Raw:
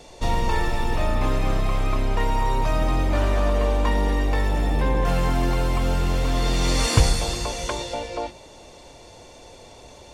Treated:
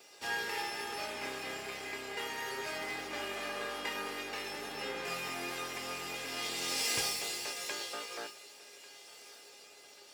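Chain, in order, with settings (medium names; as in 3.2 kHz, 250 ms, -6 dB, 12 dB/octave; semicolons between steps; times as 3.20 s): comb filter that takes the minimum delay 0.39 ms; high-pass 250 Hz 12 dB/octave; tilt shelf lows -5 dB, about 780 Hz; feedback comb 410 Hz, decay 0.3 s, harmonics all, mix 90%; thinning echo 1143 ms, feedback 48%, high-pass 1.1 kHz, level -17 dB; trim +4.5 dB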